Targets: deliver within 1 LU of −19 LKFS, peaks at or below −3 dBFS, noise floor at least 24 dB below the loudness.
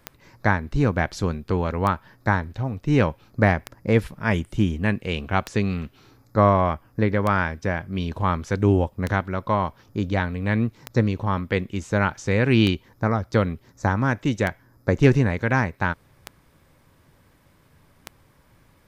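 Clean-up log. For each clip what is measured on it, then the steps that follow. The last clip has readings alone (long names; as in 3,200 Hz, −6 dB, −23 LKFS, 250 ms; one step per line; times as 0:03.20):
number of clicks 11; integrated loudness −23.5 LKFS; sample peak −3.0 dBFS; target loudness −19.0 LKFS
→ click removal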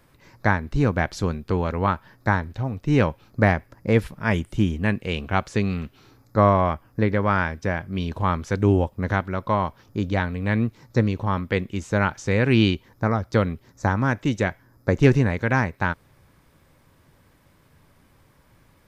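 number of clicks 0; integrated loudness −23.5 LKFS; sample peak −3.0 dBFS; target loudness −19.0 LKFS
→ level +4.5 dB
brickwall limiter −3 dBFS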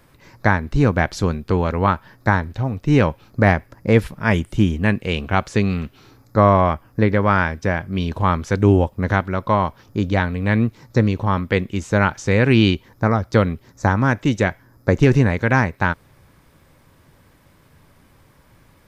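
integrated loudness −19.0 LKFS; sample peak −3.0 dBFS; background noise floor −54 dBFS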